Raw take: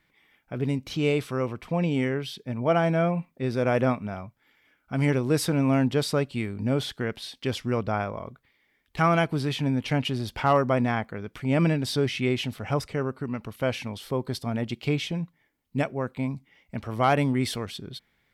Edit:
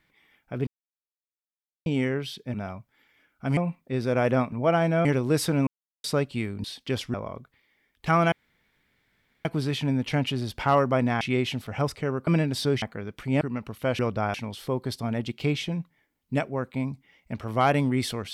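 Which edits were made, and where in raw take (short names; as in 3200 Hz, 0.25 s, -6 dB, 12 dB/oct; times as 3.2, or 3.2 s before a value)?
0.67–1.86 mute
2.54–3.07 swap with 4.02–5.05
5.67–6.04 mute
6.64–7.2 cut
7.7–8.05 move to 13.77
9.23 insert room tone 1.13 s
10.99–11.58 swap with 12.13–13.19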